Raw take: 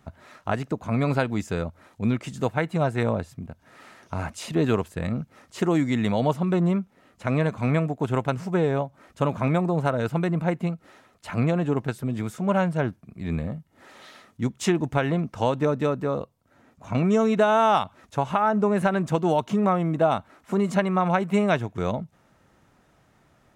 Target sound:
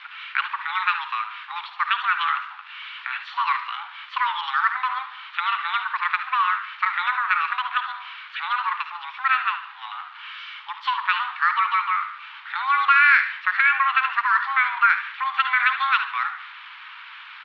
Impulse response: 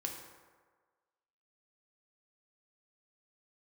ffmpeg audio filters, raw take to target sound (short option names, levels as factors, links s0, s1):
-filter_complex "[0:a]aeval=exprs='val(0)+0.5*0.0158*sgn(val(0))':c=same,asplit=2[s0][s1];[1:a]atrim=start_sample=2205,afade=t=out:st=0.32:d=0.01,atrim=end_sample=14553,adelay=73[s2];[s1][s2]afir=irnorm=-1:irlink=0,volume=0.282[s3];[s0][s3]amix=inputs=2:normalize=0,highpass=f=390:t=q:w=0.5412,highpass=f=390:t=q:w=1.307,lowpass=f=2300:t=q:w=0.5176,lowpass=f=2300:t=q:w=0.7071,lowpass=f=2300:t=q:w=1.932,afreqshift=390,asplit=5[s4][s5][s6][s7][s8];[s5]adelay=98,afreqshift=70,volume=0.251[s9];[s6]adelay=196,afreqshift=140,volume=0.0881[s10];[s7]adelay=294,afreqshift=210,volume=0.0309[s11];[s8]adelay=392,afreqshift=280,volume=0.0107[s12];[s4][s9][s10][s11][s12]amix=inputs=5:normalize=0,asetrate=59535,aresample=44100,volume=1.5"